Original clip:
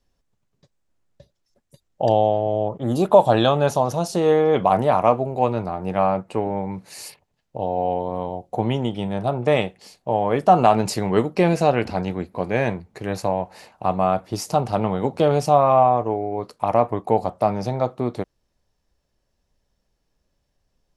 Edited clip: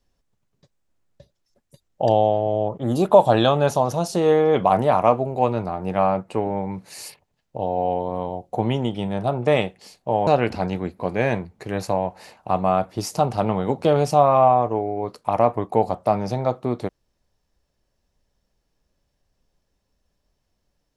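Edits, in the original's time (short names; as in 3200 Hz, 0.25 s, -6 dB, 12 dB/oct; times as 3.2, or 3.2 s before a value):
10.27–11.62 cut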